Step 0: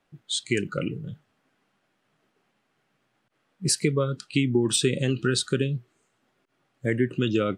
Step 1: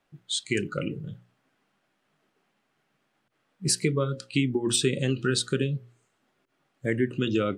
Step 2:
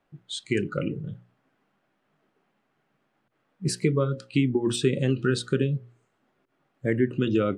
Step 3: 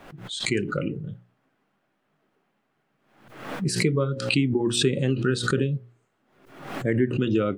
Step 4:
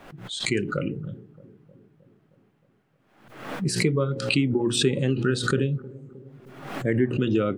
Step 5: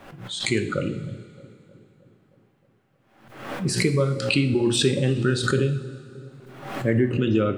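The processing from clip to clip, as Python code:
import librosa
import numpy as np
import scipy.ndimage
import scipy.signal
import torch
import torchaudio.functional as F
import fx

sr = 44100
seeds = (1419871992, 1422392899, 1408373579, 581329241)

y1 = fx.hum_notches(x, sr, base_hz=60, count=9)
y1 = F.gain(torch.from_numpy(y1), -1.0).numpy()
y2 = fx.high_shelf(y1, sr, hz=2800.0, db=-11.5)
y2 = F.gain(torch.from_numpy(y2), 2.5).numpy()
y3 = fx.pre_swell(y2, sr, db_per_s=74.0)
y4 = fx.echo_bbd(y3, sr, ms=311, stages=2048, feedback_pct=63, wet_db=-19.5)
y5 = fx.rev_double_slope(y4, sr, seeds[0], early_s=0.52, late_s=2.7, knee_db=-15, drr_db=7.0)
y5 = F.gain(torch.from_numpy(y5), 1.0).numpy()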